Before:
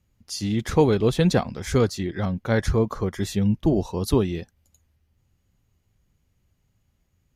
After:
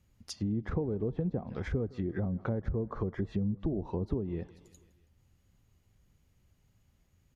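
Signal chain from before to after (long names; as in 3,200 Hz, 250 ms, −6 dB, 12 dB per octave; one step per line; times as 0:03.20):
downward compressor 6 to 1, threshold −29 dBFS, peak gain reduction 15.5 dB
repeating echo 162 ms, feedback 57%, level −22 dB
treble cut that deepens with the level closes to 540 Hz, closed at −28 dBFS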